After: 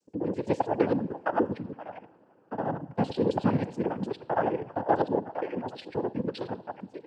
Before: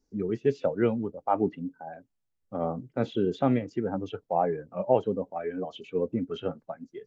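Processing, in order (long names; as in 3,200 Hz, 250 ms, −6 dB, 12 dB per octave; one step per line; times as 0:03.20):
reversed piece by piece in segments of 66 ms
coupled-rooms reverb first 0.56 s, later 3.7 s, from −16 dB, DRR 13 dB
cochlear-implant simulation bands 8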